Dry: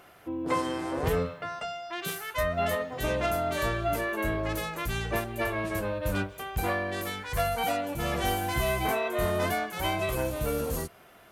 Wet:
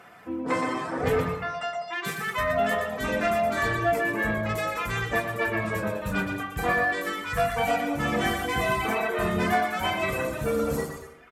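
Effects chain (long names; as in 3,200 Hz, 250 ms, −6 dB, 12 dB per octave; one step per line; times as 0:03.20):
high-shelf EQ 2,700 Hz −11 dB
on a send: bouncing-ball delay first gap 120 ms, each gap 0.7×, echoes 5
on the sum: reverb reduction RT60 1.2 s
high-shelf EQ 10,000 Hz −6 dB
notch filter 2,700 Hz, Q 23
convolution reverb RT60 1.0 s, pre-delay 3 ms, DRR 4.5 dB
in parallel at −12 dB: hard clipping −31 dBFS, distortion −13 dB
on the sum: level +7 dB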